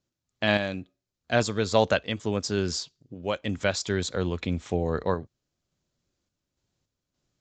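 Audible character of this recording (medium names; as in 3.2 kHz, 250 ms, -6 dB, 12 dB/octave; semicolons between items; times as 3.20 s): random-step tremolo; Vorbis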